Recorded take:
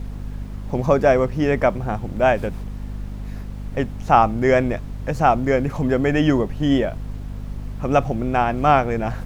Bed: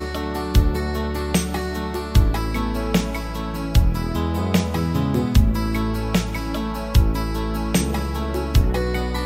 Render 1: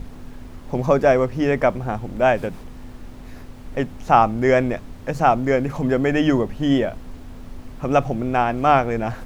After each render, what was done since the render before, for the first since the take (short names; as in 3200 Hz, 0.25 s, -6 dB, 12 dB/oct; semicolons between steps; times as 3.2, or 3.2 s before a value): notches 50/100/150/200 Hz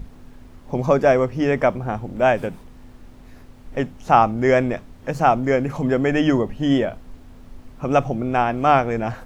noise print and reduce 6 dB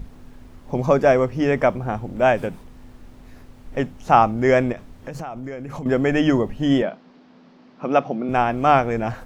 4.72–5.86 compressor 20:1, threshold -27 dBFS; 6.82–8.29 elliptic band-pass 180–5000 Hz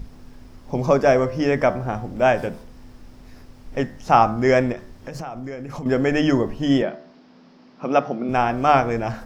bell 5200 Hz +8 dB 0.32 oct; de-hum 73.66 Hz, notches 28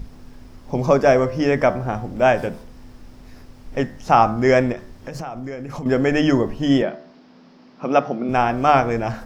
gain +1.5 dB; limiter -2 dBFS, peak gain reduction 2 dB